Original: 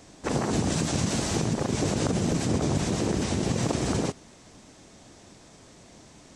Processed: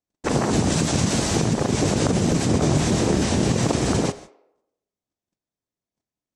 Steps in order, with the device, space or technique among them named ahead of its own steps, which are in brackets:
noise gate −44 dBFS, range −47 dB
filtered reverb send (on a send: high-pass filter 420 Hz 24 dB per octave + low-pass filter 5,400 Hz + convolution reverb RT60 0.80 s, pre-delay 25 ms, DRR 14.5 dB)
0:02.59–0:03.50: on the sum: double-tracking delay 26 ms −6 dB
level +5.5 dB

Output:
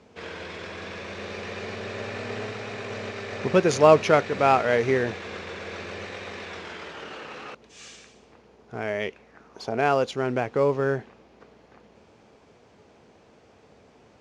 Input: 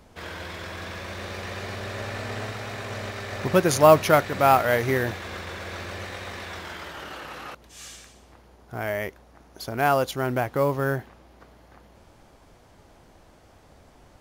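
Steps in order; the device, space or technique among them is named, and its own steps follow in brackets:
0:08.99–0:09.79: parametric band 3,700 Hz → 630 Hz +11.5 dB 0.55 octaves
car door speaker (loudspeaker in its box 100–7,200 Hz, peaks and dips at 220 Hz +5 dB, 440 Hz +9 dB, 2,500 Hz +5 dB)
level −2.5 dB

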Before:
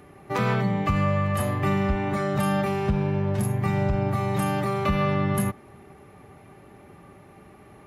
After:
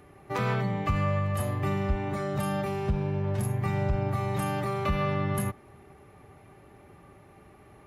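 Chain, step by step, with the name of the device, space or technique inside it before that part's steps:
low shelf boost with a cut just above (low-shelf EQ 100 Hz +4.5 dB; parametric band 200 Hz −4 dB 0.77 octaves)
0:01.19–0:03.24: parametric band 1,700 Hz −3 dB 2.1 octaves
level −4 dB

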